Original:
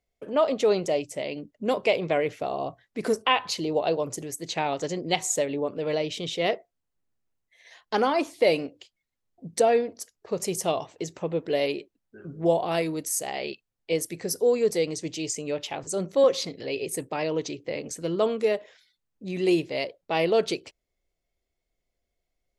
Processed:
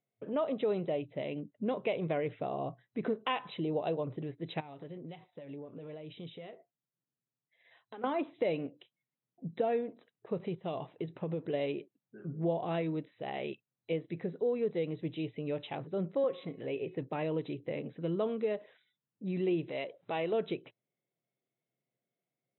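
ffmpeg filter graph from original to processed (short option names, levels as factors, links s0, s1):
-filter_complex "[0:a]asettb=1/sr,asplit=3[s0][s1][s2];[s0]atrim=end=4.604[s3];[s1]atrim=start=4.6:end=8.04,asetpts=PTS-STARTPTS,afade=t=in:d=0.004:c=qsin,afade=t=out:st=3.436:d=0.004:c=qsin,acompressor=threshold=0.02:ratio=8:attack=3.2:release=140:knee=1:detection=peak,flanger=delay=5.7:depth=2:regen=-56:speed=1.3:shape=sinusoidal[s4];[s2]atrim=start=8.036[s5];[s3][s4]acrossfade=d=0.004:c1=hsin:c2=qsin[s6];[s6][s5]acrossfade=d=0.004:c1=qsin:c2=hsin,asettb=1/sr,asplit=3[s7][s8][s9];[s7]atrim=end=10.464[s10];[s8]atrim=start=10.46:end=11.54,asetpts=PTS-STARTPTS,afade=t=in:d=0.004:c=qsin,afade=t=out:st=1.076:d=0.004:c=qsin,lowpass=f=7800:t=q:w=14,equalizer=f=4700:t=o:w=0.37:g=-6,acompressor=threshold=0.0501:ratio=5:attack=3.2:release=140:knee=1:detection=peak[s11];[s9]atrim=start=11.536[s12];[s10][s11]acrossfade=d=0.004:c1=hsin:c2=qsin[s13];[s13][s12]acrossfade=d=0.004:c1=qsin:c2=hsin,asettb=1/sr,asplit=3[s14][s15][s16];[s14]atrim=end=16.114[s17];[s15]atrim=start=16.11:end=16.98,asetpts=PTS-STARTPTS,afade=t=in:d=0.004:c=qsin,afade=t=out:st=0.866:d=0.004:c=qsin,bass=f=250:g=-3,treble=f=4000:g=-12,bandreject=f=365.1:t=h:w=4,bandreject=f=730.2:t=h:w=4,bandreject=f=1095.3:t=h:w=4,bandreject=f=1460.4:t=h:w=4,bandreject=f=1825.5:t=h:w=4,bandreject=f=2190.6:t=h:w=4,bandreject=f=2555.7:t=h:w=4,bandreject=f=2920.8:t=h:w=4[s18];[s16]atrim=start=16.976[s19];[s17][s18]acrossfade=d=0.004:c1=hsin:c2=qsin[s20];[s20][s19]acrossfade=d=0.004:c1=qsin:c2=hsin,asettb=1/sr,asplit=3[s21][s22][s23];[s21]atrim=end=19.684[s24];[s22]atrim=start=19.68:end=20.33,asetpts=PTS-STARTPTS,afade=t=in:d=0.004:c=qsin,afade=t=out:st=0.646:d=0.004:c=qsin,lowshelf=f=230:g=-12,acompressor=mode=upward:threshold=0.0316:ratio=2.5:attack=3.2:release=140:knee=2.83:detection=peak,volume=8.41,asoftclip=hard,volume=0.119[s25];[s23]atrim=start=20.326[s26];[s24][s25]acrossfade=d=0.004:c1=hsin:c2=qsin[s27];[s27][s26]acrossfade=d=0.004:c1=qsin:c2=hsin,aemphasis=mode=reproduction:type=bsi,afftfilt=real='re*between(b*sr/4096,110,4000)':imag='im*between(b*sr/4096,110,4000)':win_size=4096:overlap=0.75,acompressor=threshold=0.0562:ratio=2,volume=0.473"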